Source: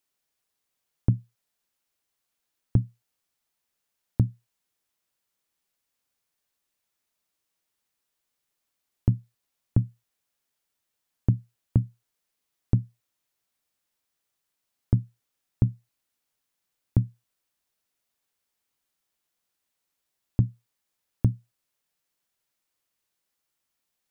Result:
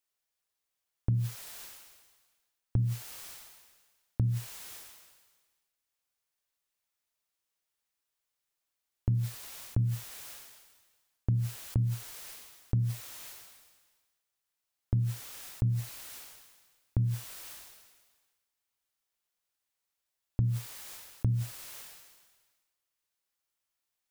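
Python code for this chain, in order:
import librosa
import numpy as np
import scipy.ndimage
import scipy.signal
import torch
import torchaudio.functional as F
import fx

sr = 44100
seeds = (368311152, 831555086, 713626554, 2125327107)

y = fx.peak_eq(x, sr, hz=210.0, db=-6.5, octaves=1.9)
y = fx.sustainer(y, sr, db_per_s=41.0)
y = y * 10.0 ** (-4.5 / 20.0)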